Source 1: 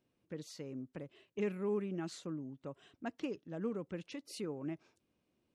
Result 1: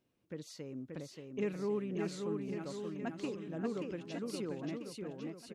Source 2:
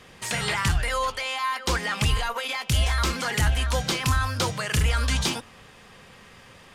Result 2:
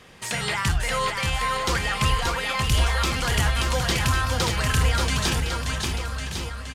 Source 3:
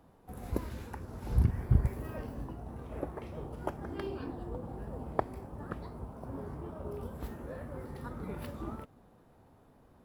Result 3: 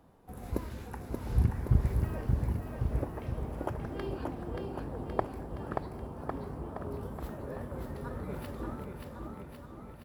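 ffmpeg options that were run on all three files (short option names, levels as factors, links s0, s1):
-af "aecho=1:1:580|1102|1572|1995|2375:0.631|0.398|0.251|0.158|0.1"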